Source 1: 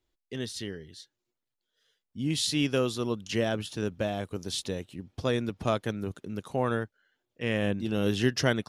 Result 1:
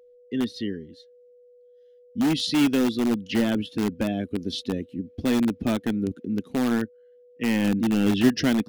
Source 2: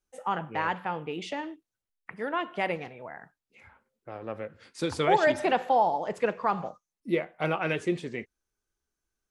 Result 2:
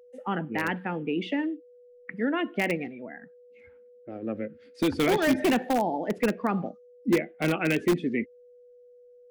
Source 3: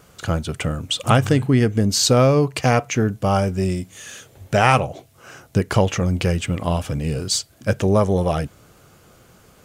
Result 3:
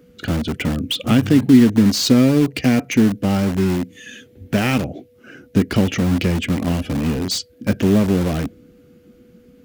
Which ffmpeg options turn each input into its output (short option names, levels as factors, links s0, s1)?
-filter_complex "[0:a]equalizer=f=125:t=o:w=1:g=-7,equalizer=f=250:t=o:w=1:g=11,equalizer=f=500:t=o:w=1:g=-3,equalizer=f=1000:t=o:w=1:g=-10,equalizer=f=2000:t=o:w=1:g=3,equalizer=f=8000:t=o:w=1:g=-9,afftdn=nr=12:nf=-41,acrossover=split=370|3000[s0][s1][s2];[s1]acompressor=threshold=0.0355:ratio=2[s3];[s0][s3][s2]amix=inputs=3:normalize=0,asplit=2[s4][s5];[s5]aeval=exprs='(mod(10.6*val(0)+1,2)-1)/10.6':c=same,volume=0.355[s6];[s4][s6]amix=inputs=2:normalize=0,aeval=exprs='val(0)+0.00224*sin(2*PI*490*n/s)':c=same,volume=1.26"